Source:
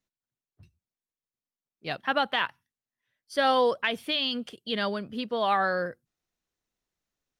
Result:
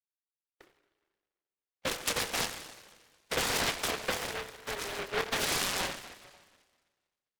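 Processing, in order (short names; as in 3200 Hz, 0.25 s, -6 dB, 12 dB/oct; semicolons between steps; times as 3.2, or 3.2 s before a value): per-bin expansion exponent 1.5; sample-and-hold 17×; wavefolder -21.5 dBFS; AGC gain up to 16 dB; gate -43 dBFS, range -19 dB; mistuned SSB +200 Hz 220–2700 Hz; fixed phaser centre 880 Hz, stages 6; compressor 6:1, threshold -38 dBFS, peak gain reduction 24 dB; 4.15–4.99 bell 690 Hz -8 dB 2.7 oct; Schroeder reverb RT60 1.5 s, combs from 30 ms, DRR 7.5 dB; noise-modulated delay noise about 1200 Hz, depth 0.39 ms; gain +6.5 dB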